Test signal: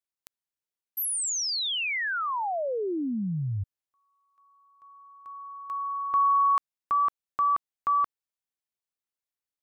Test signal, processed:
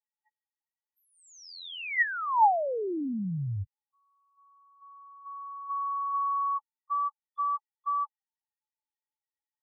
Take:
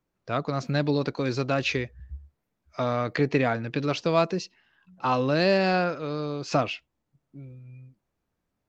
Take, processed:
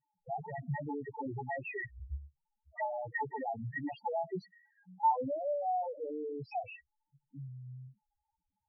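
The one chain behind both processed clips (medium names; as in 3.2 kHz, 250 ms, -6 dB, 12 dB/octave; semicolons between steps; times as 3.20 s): compression 8:1, threshold -28 dBFS; integer overflow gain 21.5 dB; small resonant body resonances 860/1900 Hz, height 16 dB, ringing for 25 ms; loudest bins only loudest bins 2; distance through air 170 m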